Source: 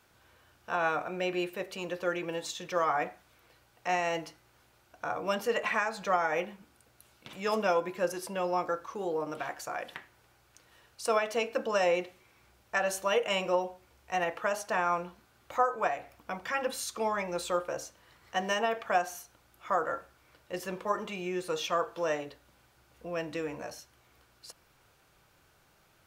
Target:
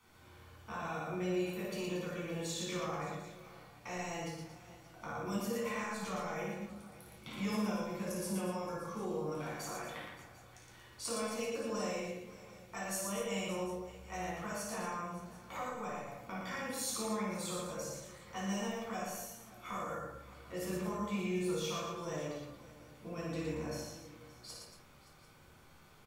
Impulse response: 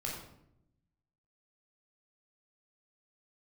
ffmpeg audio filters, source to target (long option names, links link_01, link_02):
-filter_complex "[0:a]acrossover=split=170|5300[link_01][link_02][link_03];[link_02]acompressor=threshold=-42dB:ratio=6[link_04];[link_01][link_04][link_03]amix=inputs=3:normalize=0,aecho=1:1:56|116|232|572|746:0.596|0.631|0.299|0.133|0.106[link_05];[1:a]atrim=start_sample=2205,asetrate=74970,aresample=44100[link_06];[link_05][link_06]afir=irnorm=-1:irlink=0,volume=3dB"